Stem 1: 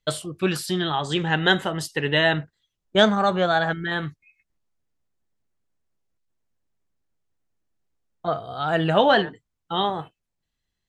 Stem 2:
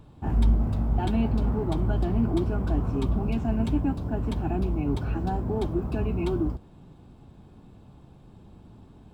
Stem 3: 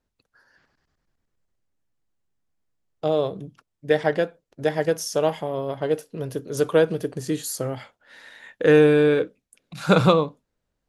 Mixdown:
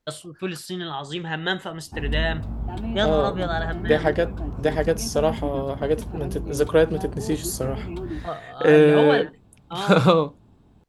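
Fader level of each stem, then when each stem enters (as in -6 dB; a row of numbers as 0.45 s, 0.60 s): -6.0 dB, -5.0 dB, +0.5 dB; 0.00 s, 1.70 s, 0.00 s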